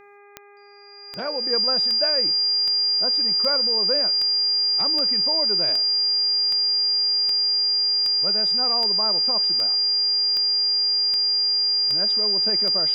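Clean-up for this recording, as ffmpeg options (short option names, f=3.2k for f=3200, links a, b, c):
-af "adeclick=t=4,bandreject=f=406.3:t=h:w=4,bandreject=f=812.6:t=h:w=4,bandreject=f=1.2189k:t=h:w=4,bandreject=f=1.6252k:t=h:w=4,bandreject=f=2.0315k:t=h:w=4,bandreject=f=2.4378k:t=h:w=4,bandreject=f=4.8k:w=30"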